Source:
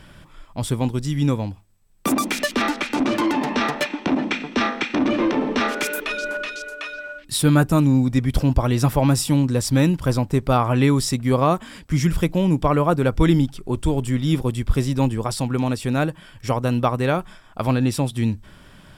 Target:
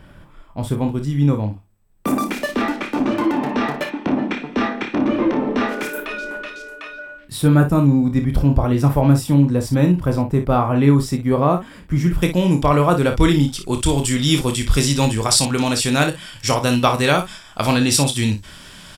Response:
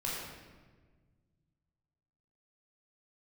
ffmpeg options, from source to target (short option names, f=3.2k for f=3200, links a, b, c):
-af "asetnsamples=n=441:p=0,asendcmd='12.22 equalizer g 5.5;13.53 equalizer g 14',equalizer=f=6.3k:t=o:w=2.9:g=-10,aecho=1:1:28|57:0.422|0.316,volume=1.5dB"